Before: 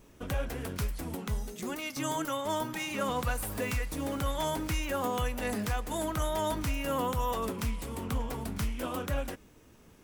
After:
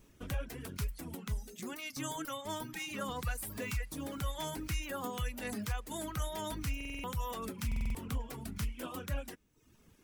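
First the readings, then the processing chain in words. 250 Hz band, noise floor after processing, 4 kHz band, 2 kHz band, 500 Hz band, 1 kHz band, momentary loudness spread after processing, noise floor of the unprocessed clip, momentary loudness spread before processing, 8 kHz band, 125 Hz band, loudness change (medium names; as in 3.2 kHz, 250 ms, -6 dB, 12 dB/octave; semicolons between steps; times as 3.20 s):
-6.5 dB, -64 dBFS, -4.5 dB, -5.0 dB, -9.5 dB, -8.5 dB, 4 LU, -57 dBFS, 5 LU, -4.0 dB, -4.0 dB, -6.0 dB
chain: reverb removal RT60 0.74 s; peaking EQ 680 Hz -5.5 dB 2 oct; buffer glitch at 6.76/7.67 s, samples 2048, times 5; trim -3 dB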